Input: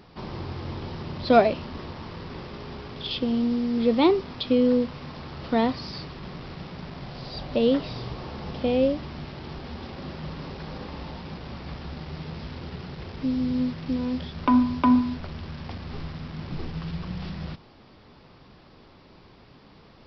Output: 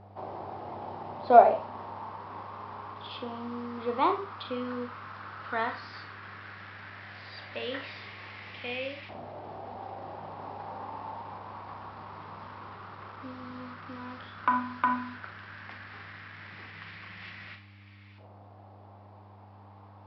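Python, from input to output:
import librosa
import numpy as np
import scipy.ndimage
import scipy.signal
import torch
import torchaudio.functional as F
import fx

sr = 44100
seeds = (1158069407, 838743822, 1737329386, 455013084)

y = fx.filter_lfo_bandpass(x, sr, shape='saw_up', hz=0.11, low_hz=690.0, high_hz=2300.0, q=3.3)
y = fx.rev_schroeder(y, sr, rt60_s=0.31, comb_ms=29, drr_db=6.0)
y = fx.dmg_buzz(y, sr, base_hz=100.0, harmonics=3, level_db=-60.0, tilt_db=-9, odd_only=False)
y = F.gain(torch.from_numpy(y), 6.5).numpy()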